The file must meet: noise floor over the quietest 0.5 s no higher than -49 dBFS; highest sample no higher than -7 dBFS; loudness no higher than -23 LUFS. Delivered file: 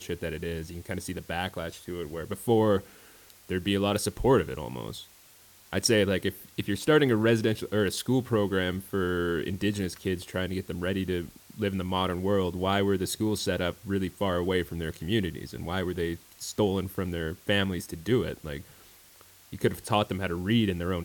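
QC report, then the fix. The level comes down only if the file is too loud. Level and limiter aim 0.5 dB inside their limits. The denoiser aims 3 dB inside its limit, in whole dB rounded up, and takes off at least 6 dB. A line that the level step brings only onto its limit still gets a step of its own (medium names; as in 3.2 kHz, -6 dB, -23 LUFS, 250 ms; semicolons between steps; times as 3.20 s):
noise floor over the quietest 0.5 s -56 dBFS: pass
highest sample -9.5 dBFS: pass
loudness -28.5 LUFS: pass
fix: none needed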